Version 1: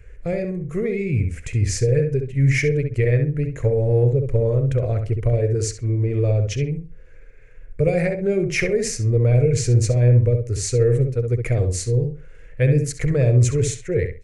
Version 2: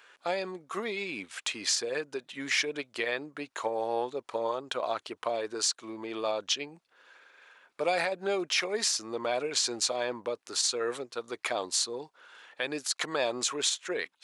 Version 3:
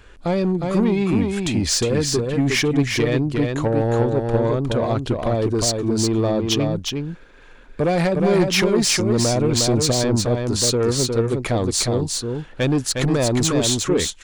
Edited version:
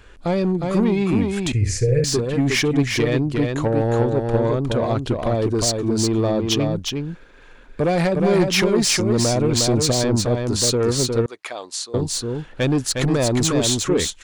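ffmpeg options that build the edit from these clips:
-filter_complex "[2:a]asplit=3[a][b][c];[a]atrim=end=1.522[d];[0:a]atrim=start=1.518:end=2.042[e];[b]atrim=start=2.038:end=11.262[f];[1:a]atrim=start=11.258:end=11.942[g];[c]atrim=start=11.938[h];[d][e]acrossfade=d=0.004:c1=hsin:c2=hsin[i];[i][f]acrossfade=d=0.004:c1=hsin:c2=hsin[j];[j][g]acrossfade=d=0.004:c1=hsin:c2=hsin[k];[k][h]acrossfade=d=0.004:c1=hsin:c2=hsin"

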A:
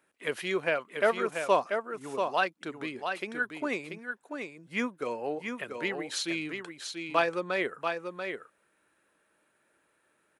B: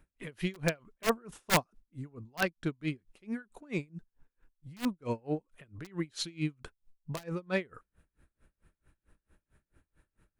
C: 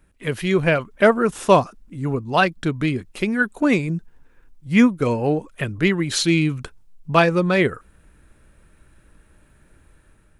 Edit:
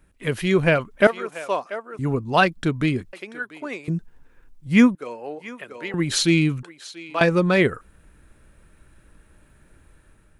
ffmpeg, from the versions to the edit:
-filter_complex "[0:a]asplit=4[a][b][c][d];[2:a]asplit=5[e][f][g][h][i];[e]atrim=end=1.072[j];[a]atrim=start=1.068:end=1.992[k];[f]atrim=start=1.988:end=3.132[l];[b]atrim=start=3.128:end=3.882[m];[g]atrim=start=3.878:end=4.952[n];[c]atrim=start=4.948:end=5.942[o];[h]atrim=start=5.938:end=6.632[p];[d]atrim=start=6.628:end=7.212[q];[i]atrim=start=7.208[r];[j][k]acrossfade=d=0.004:c1=hsin:c2=hsin[s];[s][l]acrossfade=d=0.004:c1=hsin:c2=hsin[t];[t][m]acrossfade=d=0.004:c1=hsin:c2=hsin[u];[u][n]acrossfade=d=0.004:c1=hsin:c2=hsin[v];[v][o]acrossfade=d=0.004:c1=hsin:c2=hsin[w];[w][p]acrossfade=d=0.004:c1=hsin:c2=hsin[x];[x][q]acrossfade=d=0.004:c1=hsin:c2=hsin[y];[y][r]acrossfade=d=0.004:c1=hsin:c2=hsin"

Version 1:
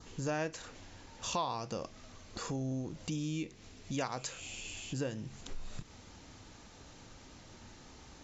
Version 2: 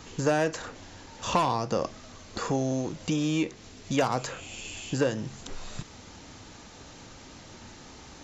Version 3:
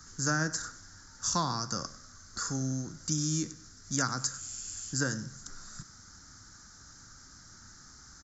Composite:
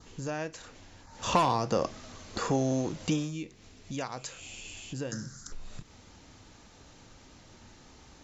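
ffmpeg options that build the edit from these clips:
-filter_complex "[0:a]asplit=3[a][b][c];[a]atrim=end=1.25[d];[1:a]atrim=start=1.01:end=3.36[e];[b]atrim=start=3.12:end=5.122[f];[2:a]atrim=start=5.118:end=5.522[g];[c]atrim=start=5.518[h];[d][e]acrossfade=d=0.24:c1=tri:c2=tri[i];[i][f]acrossfade=d=0.24:c1=tri:c2=tri[j];[j][g]acrossfade=d=0.004:c1=hsin:c2=hsin[k];[k][h]acrossfade=d=0.004:c1=hsin:c2=hsin"

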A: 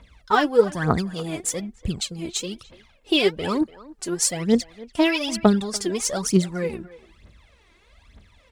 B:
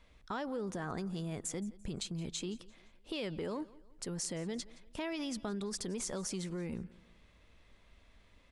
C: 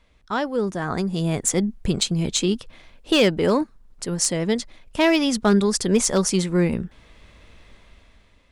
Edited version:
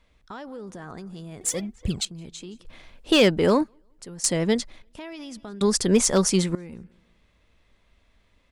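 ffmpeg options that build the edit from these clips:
-filter_complex "[2:a]asplit=3[a][b][c];[1:a]asplit=5[d][e][f][g][h];[d]atrim=end=1.412[i];[0:a]atrim=start=1.408:end=2.052[j];[e]atrim=start=2.048:end=2.652[k];[a]atrim=start=2.648:end=3.682[l];[f]atrim=start=3.678:end=4.242[m];[b]atrim=start=4.238:end=4.822[n];[g]atrim=start=4.818:end=5.612[o];[c]atrim=start=5.608:end=6.552[p];[h]atrim=start=6.548[q];[i][j]acrossfade=d=0.004:c1=hsin:c2=hsin[r];[r][k]acrossfade=d=0.004:c1=hsin:c2=hsin[s];[s][l]acrossfade=d=0.004:c1=hsin:c2=hsin[t];[t][m]acrossfade=d=0.004:c1=hsin:c2=hsin[u];[u][n]acrossfade=d=0.004:c1=hsin:c2=hsin[v];[v][o]acrossfade=d=0.004:c1=hsin:c2=hsin[w];[w][p]acrossfade=d=0.004:c1=hsin:c2=hsin[x];[x][q]acrossfade=d=0.004:c1=hsin:c2=hsin"

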